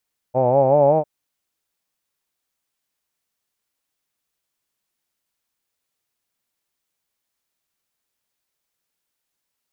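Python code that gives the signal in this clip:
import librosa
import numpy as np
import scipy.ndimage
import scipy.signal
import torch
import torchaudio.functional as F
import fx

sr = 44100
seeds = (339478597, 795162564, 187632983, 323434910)

y = fx.vowel(sr, seeds[0], length_s=0.7, word='hawed', hz=123.0, glide_st=4.0, vibrato_hz=5.3, vibrato_st=0.9)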